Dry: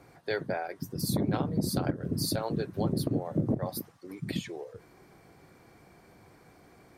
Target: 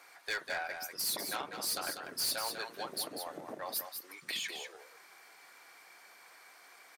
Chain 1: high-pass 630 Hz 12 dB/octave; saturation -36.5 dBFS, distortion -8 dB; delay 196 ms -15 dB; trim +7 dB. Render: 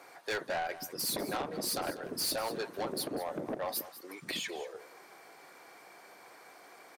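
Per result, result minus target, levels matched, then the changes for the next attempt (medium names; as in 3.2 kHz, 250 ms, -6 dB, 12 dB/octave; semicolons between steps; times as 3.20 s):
500 Hz band +6.5 dB; echo-to-direct -8 dB
change: high-pass 1.3 kHz 12 dB/octave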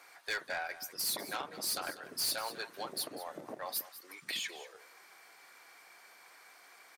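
echo-to-direct -8 dB
change: delay 196 ms -7 dB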